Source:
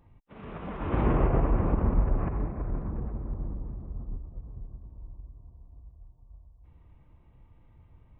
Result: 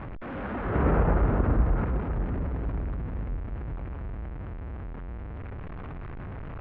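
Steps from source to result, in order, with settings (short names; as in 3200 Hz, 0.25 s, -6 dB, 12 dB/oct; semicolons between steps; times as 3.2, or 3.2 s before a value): zero-crossing step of -32 dBFS; varispeed +24%; LPF 2200 Hz 24 dB/oct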